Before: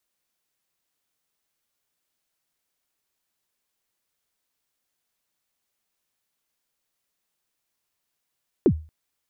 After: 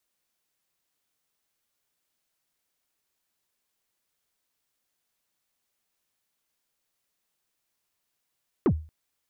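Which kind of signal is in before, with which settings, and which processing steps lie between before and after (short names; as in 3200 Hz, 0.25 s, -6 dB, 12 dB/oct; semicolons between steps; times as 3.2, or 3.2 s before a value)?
kick drum length 0.23 s, from 440 Hz, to 78 Hz, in 70 ms, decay 0.34 s, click off, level -10 dB
soft clip -17.5 dBFS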